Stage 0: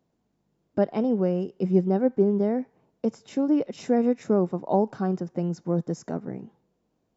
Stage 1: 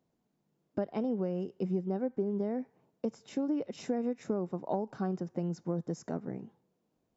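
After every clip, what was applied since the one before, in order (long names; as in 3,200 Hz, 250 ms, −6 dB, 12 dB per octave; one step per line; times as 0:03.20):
mains-hum notches 50/100 Hz
downward compressor 6 to 1, threshold −24 dBFS, peak gain reduction 9.5 dB
level −4.5 dB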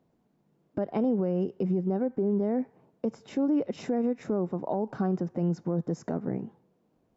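high-shelf EQ 3,300 Hz −11.5 dB
brickwall limiter −28 dBFS, peak gain reduction 8.5 dB
level +8.5 dB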